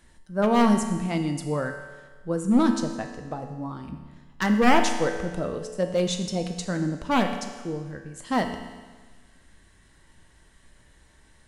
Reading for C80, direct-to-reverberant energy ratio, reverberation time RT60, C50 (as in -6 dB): 8.5 dB, 4.5 dB, 1.4 s, 7.0 dB